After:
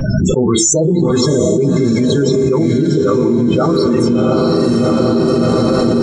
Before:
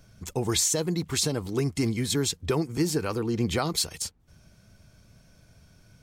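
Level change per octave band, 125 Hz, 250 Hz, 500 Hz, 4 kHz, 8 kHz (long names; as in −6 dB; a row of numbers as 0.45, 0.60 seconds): +15.0, +18.5, +19.0, +6.5, +9.5 decibels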